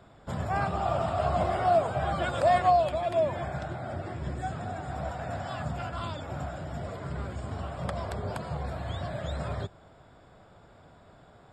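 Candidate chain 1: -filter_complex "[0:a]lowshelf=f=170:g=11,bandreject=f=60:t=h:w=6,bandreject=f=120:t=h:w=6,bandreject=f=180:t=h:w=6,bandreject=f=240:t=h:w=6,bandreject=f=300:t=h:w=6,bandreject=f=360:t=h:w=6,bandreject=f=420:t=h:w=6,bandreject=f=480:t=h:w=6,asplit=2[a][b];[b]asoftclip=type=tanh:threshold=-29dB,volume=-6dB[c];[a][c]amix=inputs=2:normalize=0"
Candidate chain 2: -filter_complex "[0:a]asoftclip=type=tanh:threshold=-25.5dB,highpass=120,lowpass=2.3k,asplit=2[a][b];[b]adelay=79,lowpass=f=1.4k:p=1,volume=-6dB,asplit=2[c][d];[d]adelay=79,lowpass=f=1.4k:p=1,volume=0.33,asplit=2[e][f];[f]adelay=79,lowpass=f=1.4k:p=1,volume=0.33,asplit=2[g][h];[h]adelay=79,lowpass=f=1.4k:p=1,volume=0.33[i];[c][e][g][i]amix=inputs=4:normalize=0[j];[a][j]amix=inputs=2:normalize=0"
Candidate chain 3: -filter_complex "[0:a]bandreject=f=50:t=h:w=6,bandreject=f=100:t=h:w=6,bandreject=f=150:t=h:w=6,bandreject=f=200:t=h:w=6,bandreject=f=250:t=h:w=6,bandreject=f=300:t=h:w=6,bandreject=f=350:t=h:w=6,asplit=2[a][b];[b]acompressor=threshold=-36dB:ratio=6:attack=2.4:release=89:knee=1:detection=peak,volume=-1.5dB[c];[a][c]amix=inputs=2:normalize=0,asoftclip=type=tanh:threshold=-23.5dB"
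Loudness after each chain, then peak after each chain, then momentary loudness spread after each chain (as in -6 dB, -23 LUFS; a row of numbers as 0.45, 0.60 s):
-26.0, -34.0, -31.5 LUFS; -11.0, -20.0, -23.5 dBFS; 8, 10, 23 LU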